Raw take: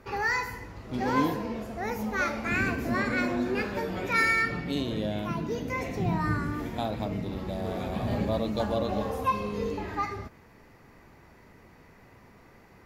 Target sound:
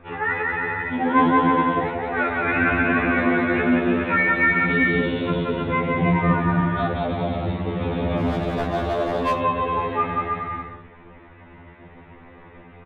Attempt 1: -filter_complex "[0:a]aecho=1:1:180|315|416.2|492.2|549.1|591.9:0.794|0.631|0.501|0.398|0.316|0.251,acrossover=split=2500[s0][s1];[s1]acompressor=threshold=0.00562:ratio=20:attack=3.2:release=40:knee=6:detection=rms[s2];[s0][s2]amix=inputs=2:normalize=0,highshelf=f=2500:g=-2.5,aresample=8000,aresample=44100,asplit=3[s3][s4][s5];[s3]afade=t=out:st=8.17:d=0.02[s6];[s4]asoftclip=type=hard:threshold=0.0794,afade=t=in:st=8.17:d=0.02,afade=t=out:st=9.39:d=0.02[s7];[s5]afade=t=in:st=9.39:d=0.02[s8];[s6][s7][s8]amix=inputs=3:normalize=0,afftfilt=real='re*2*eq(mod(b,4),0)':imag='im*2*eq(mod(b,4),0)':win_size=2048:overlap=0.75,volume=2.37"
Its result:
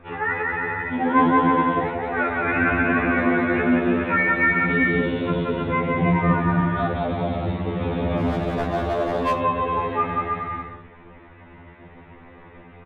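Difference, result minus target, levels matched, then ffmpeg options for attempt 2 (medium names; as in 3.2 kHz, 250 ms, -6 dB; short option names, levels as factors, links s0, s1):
compression: peak gain reduction +8.5 dB
-filter_complex "[0:a]aecho=1:1:180|315|416.2|492.2|549.1|591.9:0.794|0.631|0.501|0.398|0.316|0.251,acrossover=split=2500[s0][s1];[s1]acompressor=threshold=0.0158:ratio=20:attack=3.2:release=40:knee=6:detection=rms[s2];[s0][s2]amix=inputs=2:normalize=0,highshelf=f=2500:g=-2.5,aresample=8000,aresample=44100,asplit=3[s3][s4][s5];[s3]afade=t=out:st=8.17:d=0.02[s6];[s4]asoftclip=type=hard:threshold=0.0794,afade=t=in:st=8.17:d=0.02,afade=t=out:st=9.39:d=0.02[s7];[s5]afade=t=in:st=9.39:d=0.02[s8];[s6][s7][s8]amix=inputs=3:normalize=0,afftfilt=real='re*2*eq(mod(b,4),0)':imag='im*2*eq(mod(b,4),0)':win_size=2048:overlap=0.75,volume=2.37"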